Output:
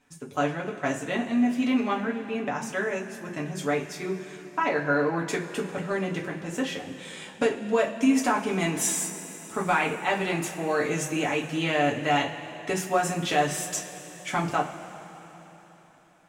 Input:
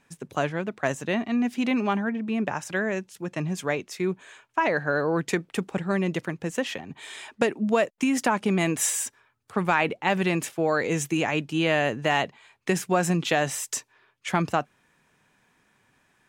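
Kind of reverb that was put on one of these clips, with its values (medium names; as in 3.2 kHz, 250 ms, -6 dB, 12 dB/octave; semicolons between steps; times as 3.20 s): two-slope reverb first 0.23 s, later 4 s, from -20 dB, DRR -3 dB; trim -5.5 dB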